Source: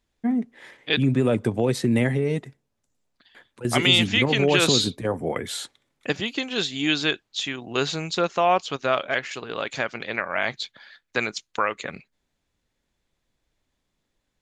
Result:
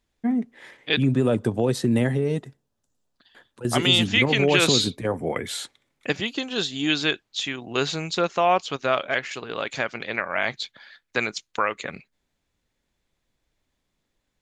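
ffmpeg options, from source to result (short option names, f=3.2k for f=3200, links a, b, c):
-af "asetnsamples=n=441:p=0,asendcmd='1.07 equalizer g -8;4.14 equalizer g 3.5;6.27 equalizer g -7.5;6.9 equalizer g 1',equalizer=f=2.2k:t=o:w=0.35:g=0.5"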